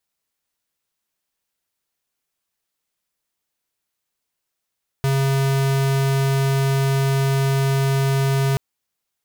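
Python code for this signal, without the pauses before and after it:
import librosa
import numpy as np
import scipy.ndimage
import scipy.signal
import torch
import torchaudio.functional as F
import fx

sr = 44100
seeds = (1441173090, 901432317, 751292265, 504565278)

y = fx.tone(sr, length_s=3.53, wave='square', hz=136.0, level_db=-18.5)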